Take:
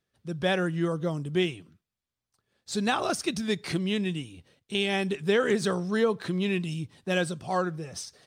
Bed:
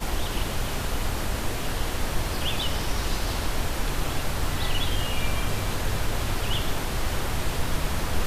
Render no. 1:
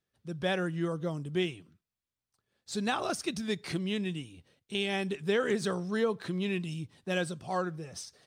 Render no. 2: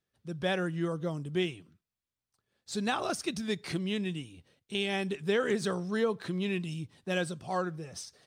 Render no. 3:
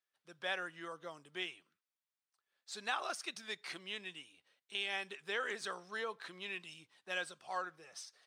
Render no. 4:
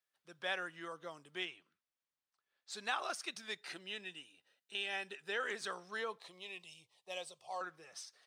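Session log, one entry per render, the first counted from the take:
trim -4.5 dB
no audible change
high-pass 1.2 kHz 12 dB/octave; tilt EQ -2.5 dB/octave
1.45–2.70 s: distance through air 67 m; 3.59–5.40 s: comb of notches 1.1 kHz; 6.18–7.61 s: static phaser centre 630 Hz, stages 4

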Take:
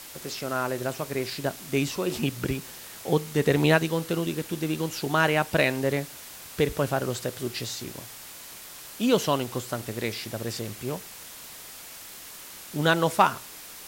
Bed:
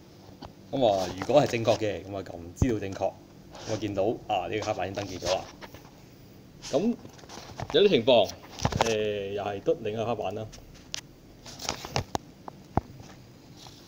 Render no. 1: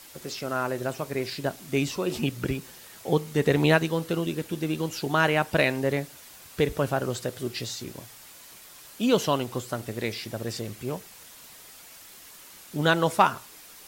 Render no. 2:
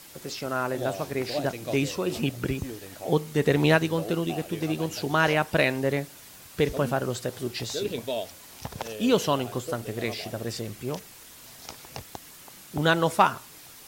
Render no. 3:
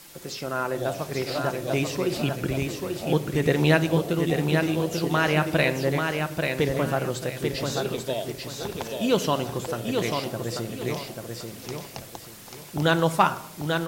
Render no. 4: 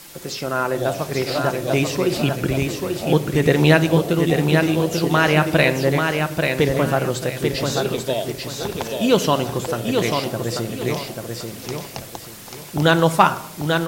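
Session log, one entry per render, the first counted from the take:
noise reduction 6 dB, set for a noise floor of -44 dBFS
add bed -10.5 dB
on a send: feedback delay 839 ms, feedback 29%, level -4.5 dB; on the sum: simulated room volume 2300 m³, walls furnished, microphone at 0.81 m
trim +6 dB; peak limiter -1 dBFS, peak gain reduction 1 dB

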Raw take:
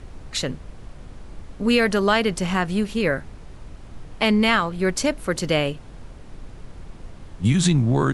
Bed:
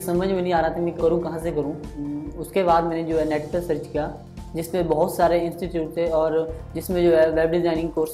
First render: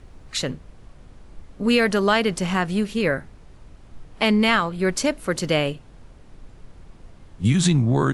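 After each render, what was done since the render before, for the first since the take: noise print and reduce 6 dB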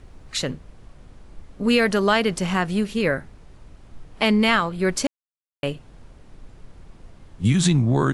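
5.07–5.63 s: mute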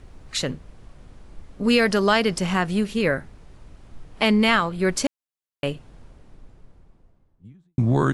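1.64–2.38 s: peaking EQ 5.1 kHz +9 dB 0.21 oct; 5.64–7.78 s: studio fade out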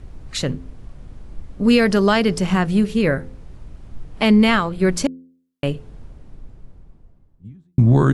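bass shelf 350 Hz +8.5 dB; de-hum 86.54 Hz, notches 6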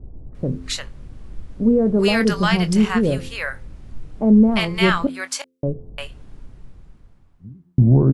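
doubling 23 ms -12 dB; bands offset in time lows, highs 350 ms, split 750 Hz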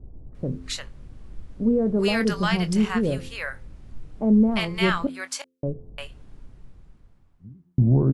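trim -5 dB

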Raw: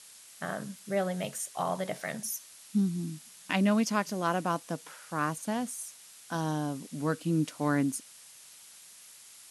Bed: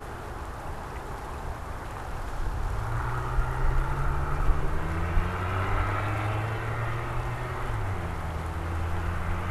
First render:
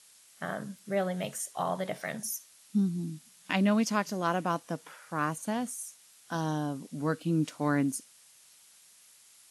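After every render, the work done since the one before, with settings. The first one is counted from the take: noise print and reduce 6 dB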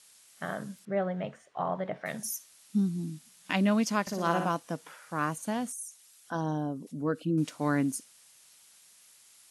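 0.85–2.06 s: low-pass 1.9 kHz; 4.01–4.49 s: flutter echo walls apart 10.2 m, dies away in 0.6 s; 5.72–7.38 s: resonances exaggerated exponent 1.5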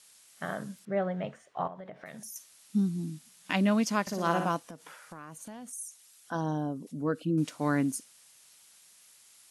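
1.67–2.36 s: compression 4:1, threshold -42 dBFS; 4.70–5.73 s: compression 8:1, threshold -41 dBFS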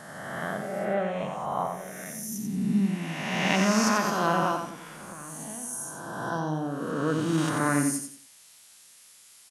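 reverse spectral sustain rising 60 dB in 1.84 s; feedback delay 90 ms, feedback 32%, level -6 dB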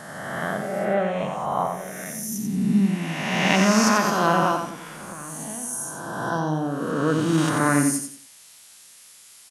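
trim +5 dB

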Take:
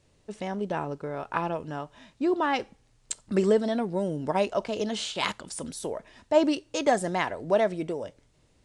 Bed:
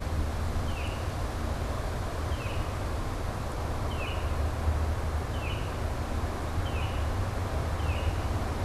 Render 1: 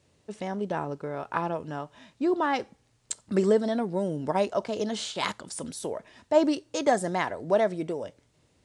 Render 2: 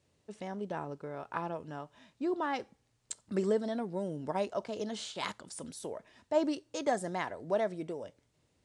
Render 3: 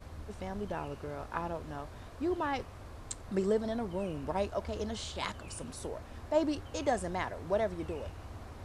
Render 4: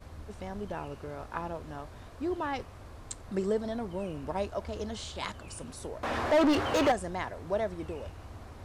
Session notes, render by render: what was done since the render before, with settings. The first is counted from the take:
high-pass 72 Hz; dynamic bell 2.7 kHz, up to -5 dB, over -50 dBFS, Q 2.8
trim -7.5 dB
add bed -15.5 dB
6.03–6.92 s: overdrive pedal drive 32 dB, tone 1.8 kHz, clips at -16 dBFS

